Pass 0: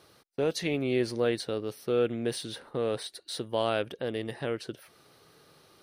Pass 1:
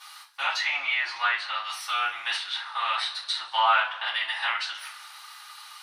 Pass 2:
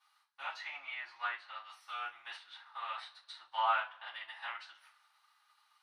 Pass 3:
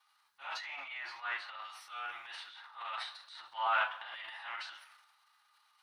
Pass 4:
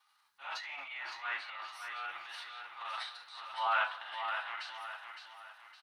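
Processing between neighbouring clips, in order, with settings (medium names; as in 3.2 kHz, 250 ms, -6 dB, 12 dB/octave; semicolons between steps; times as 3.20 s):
elliptic high-pass 900 Hz, stop band 50 dB; low-pass that closes with the level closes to 1.9 kHz, closed at -36 dBFS; two-slope reverb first 0.27 s, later 2 s, from -22 dB, DRR -8.5 dB; trim +8 dB
treble shelf 2.2 kHz -9.5 dB; upward expansion 1.5:1, over -51 dBFS; trim -6.5 dB
transient shaper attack -7 dB, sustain +10 dB
feedback delay 562 ms, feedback 40%, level -7 dB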